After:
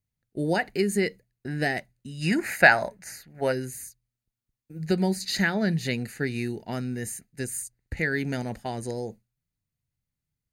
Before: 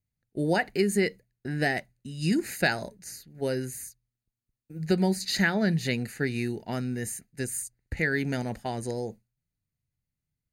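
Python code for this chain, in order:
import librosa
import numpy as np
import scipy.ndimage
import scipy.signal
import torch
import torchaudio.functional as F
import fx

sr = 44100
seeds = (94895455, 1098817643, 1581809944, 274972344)

y = fx.band_shelf(x, sr, hz=1200.0, db=10.5, octaves=2.4, at=(2.2, 3.51), fade=0.02)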